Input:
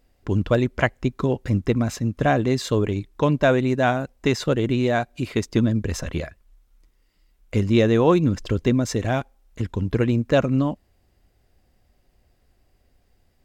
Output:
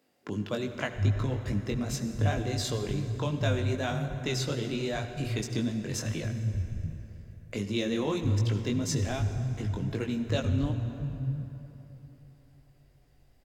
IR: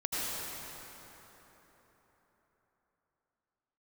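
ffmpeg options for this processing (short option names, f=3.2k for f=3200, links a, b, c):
-filter_complex "[0:a]acrossover=split=150[a][b];[a]adelay=690[c];[c][b]amix=inputs=2:normalize=0,flanger=delay=19:depth=2.9:speed=2.6,acrossover=split=150|3000[d][e][f];[e]acompressor=threshold=-42dB:ratio=2[g];[d][g][f]amix=inputs=3:normalize=0,asplit=2[h][i];[1:a]atrim=start_sample=2205,asetrate=52920,aresample=44100[j];[i][j]afir=irnorm=-1:irlink=0,volume=-12.5dB[k];[h][k]amix=inputs=2:normalize=0"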